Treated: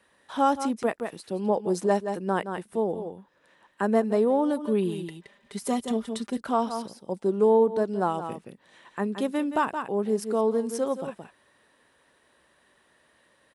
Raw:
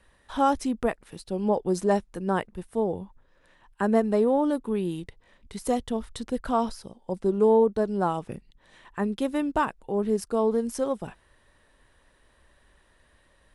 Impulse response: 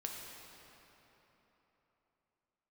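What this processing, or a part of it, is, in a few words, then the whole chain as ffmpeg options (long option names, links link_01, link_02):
ducked delay: -filter_complex "[0:a]highpass=180,asplit=3[link_01][link_02][link_03];[link_02]adelay=171,volume=-6dB[link_04];[link_03]apad=whole_len=604772[link_05];[link_04][link_05]sidechaincompress=threshold=-37dB:ratio=5:attack=43:release=125[link_06];[link_01][link_06]amix=inputs=2:normalize=0,asettb=1/sr,asplit=3[link_07][link_08][link_09];[link_07]atrim=end=4.654[link_10];[link_08]atrim=start=4.65:end=6.37,asetpts=PTS-STARTPTS,afade=type=in:duration=0.004:curve=qsin,afade=type=out:start_time=1.716:duration=0.004:curve=qsin,aecho=1:1:5:0.66,atrim=end_sample=75852[link_11];[link_09]atrim=start=6.366[link_12];[link_10][link_11]acrossfade=duration=0.004:curve1=hsin:curve2=qsin[link_13];[link_13][link_12]acrossfade=duration=0.004:curve1=qsin:curve2=hsin"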